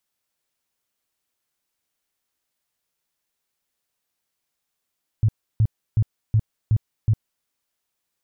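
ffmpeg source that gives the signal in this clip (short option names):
-f lavfi -i "aevalsrc='0.211*sin(2*PI*109*mod(t,0.37))*lt(mod(t,0.37),6/109)':d=2.22:s=44100"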